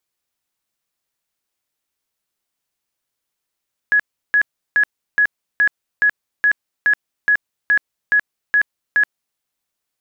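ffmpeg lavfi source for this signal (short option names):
-f lavfi -i "aevalsrc='0.299*sin(2*PI*1680*mod(t,0.42))*lt(mod(t,0.42),127/1680)':d=5.46:s=44100"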